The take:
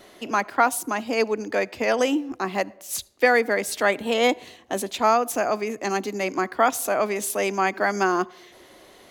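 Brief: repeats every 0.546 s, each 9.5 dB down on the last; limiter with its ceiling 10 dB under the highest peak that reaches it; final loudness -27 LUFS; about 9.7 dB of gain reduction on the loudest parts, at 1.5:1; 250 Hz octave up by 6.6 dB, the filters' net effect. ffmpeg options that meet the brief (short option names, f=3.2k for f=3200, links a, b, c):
-af "equalizer=f=250:t=o:g=8,acompressor=threshold=-40dB:ratio=1.5,alimiter=limit=-23dB:level=0:latency=1,aecho=1:1:546|1092|1638|2184:0.335|0.111|0.0365|0.012,volume=5.5dB"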